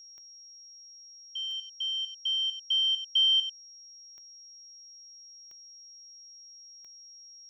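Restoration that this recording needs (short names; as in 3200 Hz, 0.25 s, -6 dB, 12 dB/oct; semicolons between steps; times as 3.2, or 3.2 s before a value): de-click; notch 5600 Hz, Q 30; inverse comb 95 ms -11.5 dB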